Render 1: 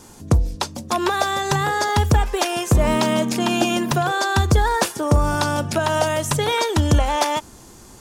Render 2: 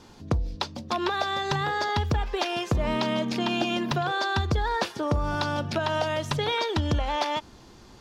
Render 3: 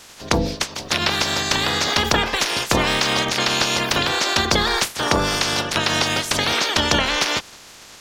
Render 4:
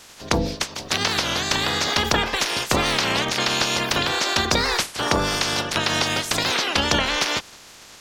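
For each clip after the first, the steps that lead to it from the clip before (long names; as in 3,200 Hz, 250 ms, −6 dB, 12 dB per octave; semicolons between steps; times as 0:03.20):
high shelf with overshoot 6,100 Hz −13 dB, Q 1.5; downward compressor 2.5 to 1, threshold −18 dBFS, peak gain reduction 5 dB; level −5 dB
ceiling on every frequency bin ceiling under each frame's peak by 29 dB; soft clipping −6.5 dBFS, distortion −30 dB; level +7 dB
wow of a warped record 33 1/3 rpm, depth 250 cents; level −2 dB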